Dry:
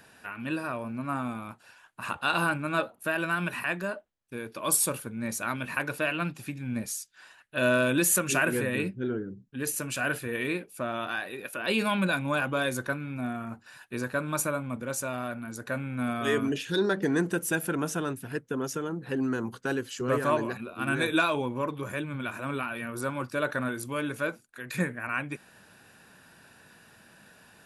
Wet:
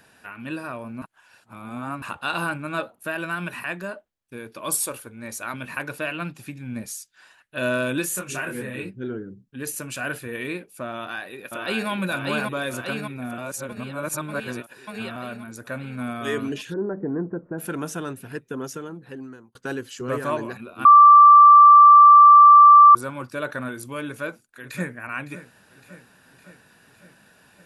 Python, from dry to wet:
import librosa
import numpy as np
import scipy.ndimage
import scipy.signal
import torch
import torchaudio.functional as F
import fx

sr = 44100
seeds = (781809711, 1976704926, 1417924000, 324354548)

y = fx.peak_eq(x, sr, hz=170.0, db=-13.0, octaves=0.77, at=(4.83, 5.54))
y = fx.detune_double(y, sr, cents=27, at=(8.01, 8.89), fade=0.02)
y = fx.echo_throw(y, sr, start_s=10.92, length_s=0.97, ms=590, feedback_pct=70, wet_db=-2.0)
y = fx.gaussian_blur(y, sr, sigma=7.9, at=(16.72, 17.58), fade=0.02)
y = fx.echo_throw(y, sr, start_s=24.07, length_s=0.87, ms=560, feedback_pct=65, wet_db=-14.0)
y = fx.edit(y, sr, fx.reverse_span(start_s=1.02, length_s=1.0),
    fx.reverse_span(start_s=13.38, length_s=1.78),
    fx.fade_out_span(start_s=18.63, length_s=0.92),
    fx.bleep(start_s=20.85, length_s=2.1, hz=1170.0, db=-6.0), tone=tone)